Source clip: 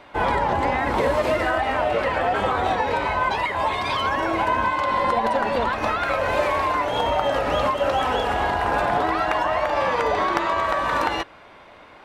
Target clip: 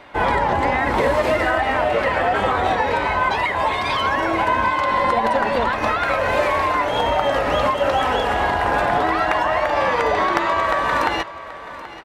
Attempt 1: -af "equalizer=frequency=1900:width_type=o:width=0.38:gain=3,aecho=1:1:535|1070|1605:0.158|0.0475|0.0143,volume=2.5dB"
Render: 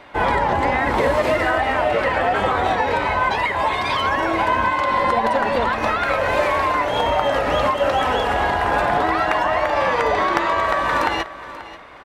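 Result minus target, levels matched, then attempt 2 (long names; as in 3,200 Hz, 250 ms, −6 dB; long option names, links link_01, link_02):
echo 245 ms early
-af "equalizer=frequency=1900:width_type=o:width=0.38:gain=3,aecho=1:1:780|1560|2340:0.158|0.0475|0.0143,volume=2.5dB"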